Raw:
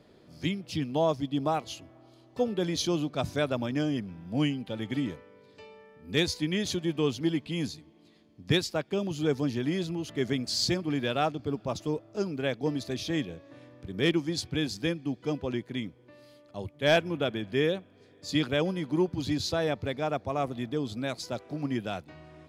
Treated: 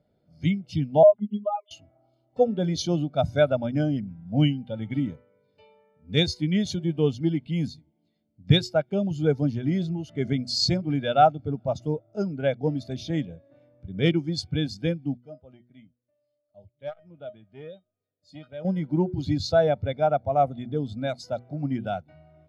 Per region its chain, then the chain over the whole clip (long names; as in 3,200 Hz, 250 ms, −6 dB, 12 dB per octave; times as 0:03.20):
0:01.03–0:01.71: three sine waves on the formant tracks + phases set to zero 206 Hz
0:15.17–0:18.65: tuned comb filter 620 Hz, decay 0.2 s, mix 80% + saturating transformer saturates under 870 Hz
whole clip: comb filter 1.4 ms, depth 46%; hum removal 121.5 Hz, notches 3; every bin expanded away from the loudest bin 1.5 to 1; level +7.5 dB